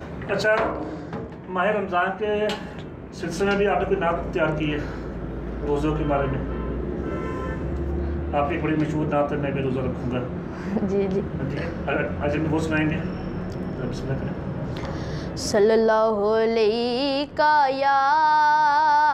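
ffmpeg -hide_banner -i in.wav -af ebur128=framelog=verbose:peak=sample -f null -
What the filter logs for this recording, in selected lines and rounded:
Integrated loudness:
  I:         -23.5 LUFS
  Threshold: -33.6 LUFS
Loudness range:
  LRA:         6.7 LU
  Threshold: -44.3 LUFS
  LRA low:   -26.7 LUFS
  LRA high:  -20.0 LUFS
Sample peak:
  Peak:       -9.6 dBFS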